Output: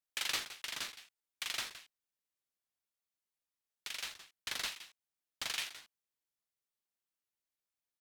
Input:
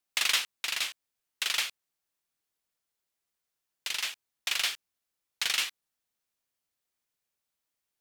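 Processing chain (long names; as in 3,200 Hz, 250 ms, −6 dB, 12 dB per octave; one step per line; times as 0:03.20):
single-tap delay 167 ms −13.5 dB
ring modulator whose carrier an LFO sweeps 640 Hz, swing 45%, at 2.4 Hz
level −6.5 dB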